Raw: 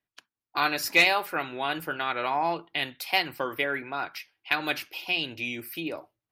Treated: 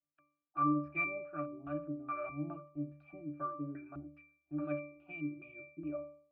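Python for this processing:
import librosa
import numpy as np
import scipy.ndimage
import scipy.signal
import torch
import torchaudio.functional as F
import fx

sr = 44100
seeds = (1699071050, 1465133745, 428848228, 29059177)

y = fx.cheby_harmonics(x, sr, harmonics=(6,), levels_db=(-29,), full_scale_db=-7.5)
y = fx.filter_lfo_lowpass(y, sr, shape='square', hz=2.4, low_hz=300.0, high_hz=1600.0, q=2.1)
y = fx.octave_resonator(y, sr, note='D', decay_s=0.51)
y = y * librosa.db_to_amplitude(6.5)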